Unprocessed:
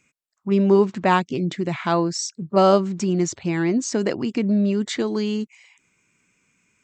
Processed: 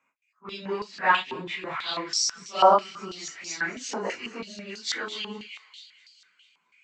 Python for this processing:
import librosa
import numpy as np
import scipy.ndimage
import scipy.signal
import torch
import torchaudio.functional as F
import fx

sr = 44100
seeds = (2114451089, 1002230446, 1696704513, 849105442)

y = fx.phase_scramble(x, sr, seeds[0], window_ms=100)
y = fx.echo_wet_highpass(y, sr, ms=220, feedback_pct=58, hz=3300.0, wet_db=-7)
y = fx.filter_held_bandpass(y, sr, hz=6.1, low_hz=950.0, high_hz=4800.0)
y = y * 10.0 ** (9.0 / 20.0)